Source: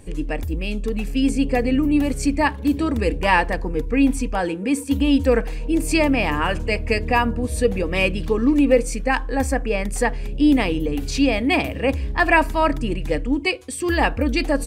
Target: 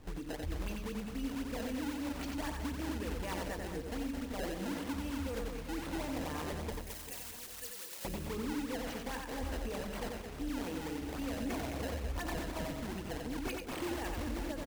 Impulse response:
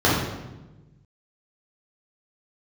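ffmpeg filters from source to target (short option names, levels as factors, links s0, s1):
-filter_complex "[0:a]acrusher=samples=22:mix=1:aa=0.000001:lfo=1:lforange=35.2:lforate=3.9,asettb=1/sr,asplit=3[s0][s1][s2];[s0]atrim=end=6.724[s3];[s1]atrim=start=6.72:end=8.05,asetpts=PTS-STARTPTS,afade=t=in:d=0.004:c=qsin,afade=t=out:st=1.326:d=0.004:c=qsin,aderivative[s4];[s2]atrim=start=8.046[s5];[s3][s4]acrossfade=d=0.004:c1=hsin:c2=qsin[s6];[s6][s5]acrossfade=d=0.004:c1=qsin:c2=hsin,alimiter=limit=0.133:level=0:latency=1:release=19,acompressor=threshold=0.0398:ratio=6,aecho=1:1:90|216|392.4|639.4|985.1:0.631|0.398|0.251|0.158|0.1,volume=0.355"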